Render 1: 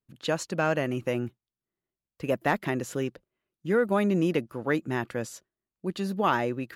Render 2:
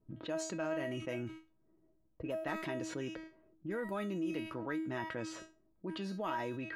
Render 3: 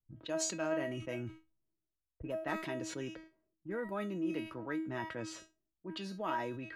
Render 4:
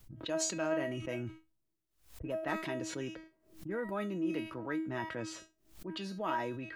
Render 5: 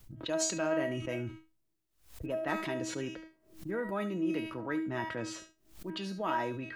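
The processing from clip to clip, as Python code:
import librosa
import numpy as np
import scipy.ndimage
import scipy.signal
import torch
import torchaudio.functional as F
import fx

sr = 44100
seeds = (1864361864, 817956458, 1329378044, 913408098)

y1 = fx.env_lowpass(x, sr, base_hz=540.0, full_db=-23.0)
y1 = fx.comb_fb(y1, sr, f0_hz=320.0, decay_s=0.26, harmonics='all', damping=0.0, mix_pct=90)
y1 = fx.env_flatten(y1, sr, amount_pct=70)
y1 = y1 * librosa.db_to_amplitude(-6.5)
y2 = fx.band_widen(y1, sr, depth_pct=100)
y3 = fx.pre_swell(y2, sr, db_per_s=130.0)
y3 = y3 * librosa.db_to_amplitude(1.5)
y4 = y3 + 10.0 ** (-15.5 / 20.0) * np.pad(y3, (int(72 * sr / 1000.0), 0))[:len(y3)]
y4 = y4 * librosa.db_to_amplitude(2.0)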